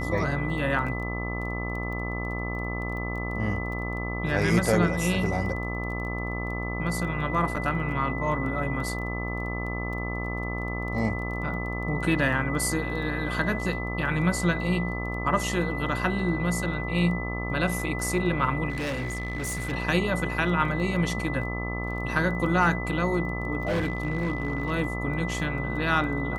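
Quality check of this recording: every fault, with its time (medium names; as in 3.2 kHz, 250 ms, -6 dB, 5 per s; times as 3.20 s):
buzz 60 Hz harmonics 22 -32 dBFS
crackle 12 per s -36 dBFS
whine 2 kHz -34 dBFS
7.56 s: dropout 4.9 ms
18.69–19.73 s: clipped -27 dBFS
23.62–24.72 s: clipped -22.5 dBFS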